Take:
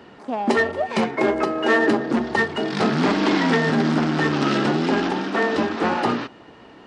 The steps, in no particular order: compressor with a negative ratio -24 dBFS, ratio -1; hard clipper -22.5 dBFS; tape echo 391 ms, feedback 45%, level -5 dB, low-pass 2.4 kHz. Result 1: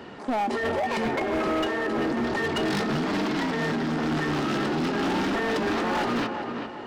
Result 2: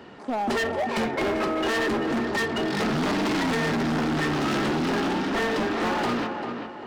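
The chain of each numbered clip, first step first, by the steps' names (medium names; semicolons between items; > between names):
compressor with a negative ratio > tape echo > hard clipper; tape echo > hard clipper > compressor with a negative ratio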